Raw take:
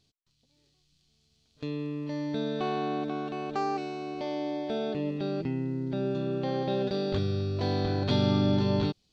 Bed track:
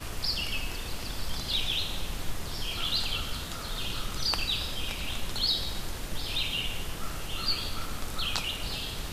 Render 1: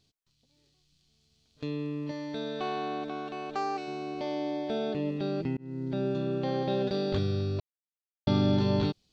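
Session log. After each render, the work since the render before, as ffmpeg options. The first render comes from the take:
-filter_complex "[0:a]asettb=1/sr,asplit=3[a][b][c];[a]atrim=end=2.114[d];[b]atrim=start=2.11:end=3.88,asetpts=PTS-STARTPTS,afade=t=in:d=0.004:c=qsin,afade=t=out:st=1.766:d=0.004:c=qsin,equalizer=f=140:w=0.47:g=-8[e];[c]atrim=start=3.876[f];[d][e]acrossfade=d=0.004:c1=hsin:c2=qsin[g];[g][f]acrossfade=d=0.004:c1=qsin:c2=hsin,asplit=4[h][i][j][k];[h]atrim=end=5.57,asetpts=PTS-STARTPTS,afade=t=out:st=5.566:d=0.004:c=hsin[l];[i]atrim=start=5.57:end=7.6,asetpts=PTS-STARTPTS,afade=t=in:d=0.43:c=qsin,afade=t=out:st=2.026:d=0.004:c=hsin[m];[j]atrim=start=7.6:end=8.27,asetpts=PTS-STARTPTS,volume=0[n];[k]atrim=start=8.27,asetpts=PTS-STARTPTS,afade=t=in:d=0.004:c=hsin[o];[l][m][n][o]concat=n=4:v=0:a=1"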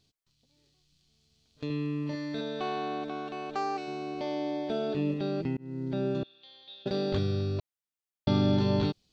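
-filter_complex "[0:a]asettb=1/sr,asplit=3[a][b][c];[a]atrim=end=1.664[d];[b]atrim=start=1.66:end=2.41,asetpts=PTS-STARTPTS,afade=t=in:d=0.004:c=qsin,afade=t=out:st=0.746:d=0.004:c=qsin,asplit=2[e][f];[f]adelay=40,volume=-4dB[g];[e][g]amix=inputs=2:normalize=0,atrim=end_sample=33075[h];[c]atrim=start=2.406[i];[d][h]acrossfade=d=0.004:c1=hsin:c2=qsin[j];[j][i]acrossfade=d=0.004:c1=qsin:c2=hsin,asettb=1/sr,asplit=3[k][l][m];[k]atrim=end=4.674[n];[l]atrim=start=4.67:end=5.14,asetpts=PTS-STARTPTS,afade=t=in:d=0.004:c=qsin,afade=t=out:st=0.466:d=0.004:c=qsin,asplit=2[o][p];[p]adelay=21,volume=-4.5dB[q];[o][q]amix=inputs=2:normalize=0,atrim=end_sample=20727[r];[m]atrim=start=5.136[s];[n][r]acrossfade=d=0.004:c1=hsin:c2=qsin[t];[t][s]acrossfade=d=0.004:c1=qsin:c2=hsin,asettb=1/sr,asplit=3[u][v][w];[u]atrim=end=6.234[x];[v]atrim=start=6.23:end=6.86,asetpts=PTS-STARTPTS,afade=t=in:d=0.004:c=qsin,afade=t=out:st=0.626:d=0.004:c=qsin,bandpass=f=3.6k:t=q:w=7[y];[w]atrim=start=6.856[z];[x][y]acrossfade=d=0.004:c1=hsin:c2=qsin[aa];[aa][z]acrossfade=d=0.004:c1=qsin:c2=hsin"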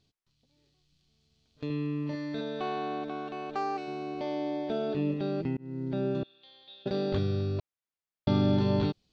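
-af "lowpass=f=3.7k:p=1"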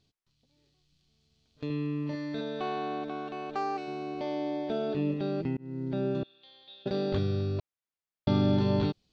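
-af anull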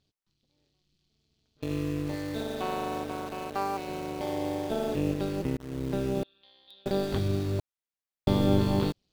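-filter_complex "[0:a]tremolo=f=200:d=0.788,asplit=2[a][b];[b]acrusher=bits=6:mix=0:aa=0.000001,volume=-3dB[c];[a][c]amix=inputs=2:normalize=0"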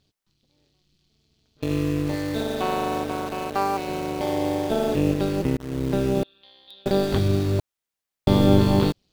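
-af "volume=7dB,alimiter=limit=-3dB:level=0:latency=1"

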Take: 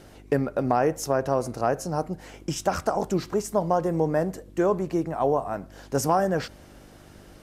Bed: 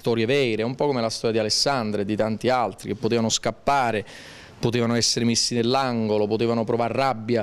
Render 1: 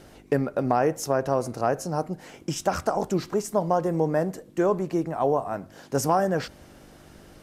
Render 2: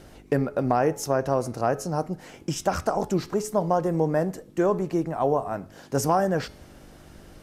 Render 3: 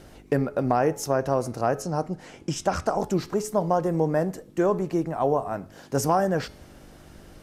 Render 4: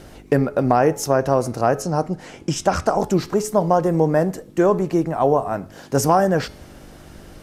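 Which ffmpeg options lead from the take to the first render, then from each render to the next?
-af "bandreject=f=50:t=h:w=4,bandreject=f=100:t=h:w=4"
-af "lowshelf=f=81:g=6.5,bandreject=f=425.7:t=h:w=4,bandreject=f=851.4:t=h:w=4,bandreject=f=1.2771k:t=h:w=4,bandreject=f=1.7028k:t=h:w=4,bandreject=f=2.1285k:t=h:w=4,bandreject=f=2.5542k:t=h:w=4,bandreject=f=2.9799k:t=h:w=4,bandreject=f=3.4056k:t=h:w=4,bandreject=f=3.8313k:t=h:w=4,bandreject=f=4.257k:t=h:w=4,bandreject=f=4.6827k:t=h:w=4,bandreject=f=5.1084k:t=h:w=4,bandreject=f=5.5341k:t=h:w=4,bandreject=f=5.9598k:t=h:w=4,bandreject=f=6.3855k:t=h:w=4"
-filter_complex "[0:a]asettb=1/sr,asplit=3[a][b][c];[a]atrim=end=1.824[d];[b]atrim=start=1.82:end=2.9,asetpts=PTS-STARTPTS,afade=t=in:d=0.004:c=qsin,afade=t=out:st=1.076:d=0.004:c=qsin,lowpass=9.6k[e];[c]atrim=start=2.896[f];[d][e]acrossfade=d=0.004:c1=hsin:c2=qsin[g];[g][f]acrossfade=d=0.004:c1=qsin:c2=hsin"
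-af "volume=6dB"

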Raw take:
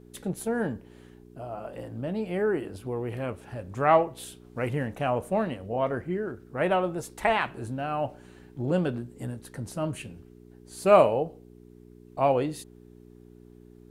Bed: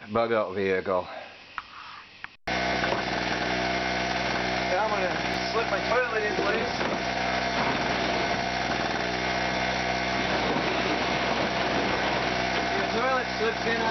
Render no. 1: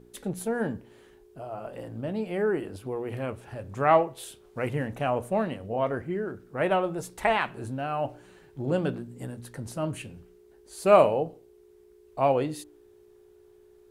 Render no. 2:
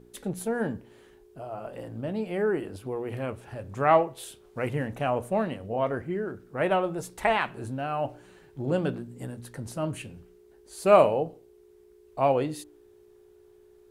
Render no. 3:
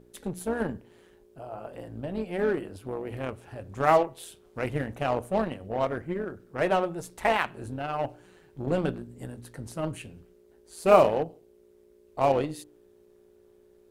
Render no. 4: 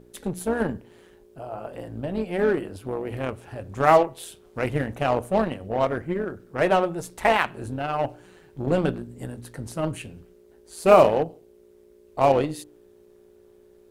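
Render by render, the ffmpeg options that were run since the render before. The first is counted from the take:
-af "bandreject=f=60:t=h:w=4,bandreject=f=120:t=h:w=4,bandreject=f=180:t=h:w=4,bandreject=f=240:t=h:w=4,bandreject=f=300:t=h:w=4"
-af anull
-filter_complex "[0:a]asplit=2[a][b];[b]acrusher=bits=3:mix=0:aa=0.5,volume=-11dB[c];[a][c]amix=inputs=2:normalize=0,tremolo=f=170:d=0.519"
-af "volume=4.5dB,alimiter=limit=-2dB:level=0:latency=1"

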